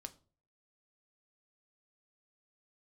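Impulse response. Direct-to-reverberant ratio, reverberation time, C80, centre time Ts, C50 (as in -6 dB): 7.5 dB, 0.40 s, 23.5 dB, 4 ms, 18.5 dB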